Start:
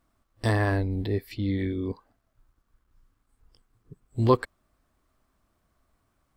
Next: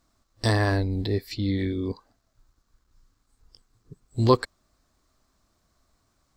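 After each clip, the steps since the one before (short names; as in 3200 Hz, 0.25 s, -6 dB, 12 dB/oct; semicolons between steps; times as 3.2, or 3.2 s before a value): band shelf 5400 Hz +9 dB 1.2 oct; gain +1.5 dB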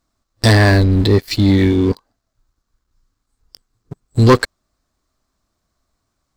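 sample leveller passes 3; gain +3.5 dB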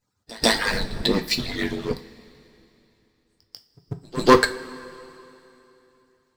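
median-filter separation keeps percussive; pre-echo 0.143 s -21.5 dB; two-slope reverb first 0.3 s, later 3.1 s, from -19 dB, DRR 6 dB; gain -1 dB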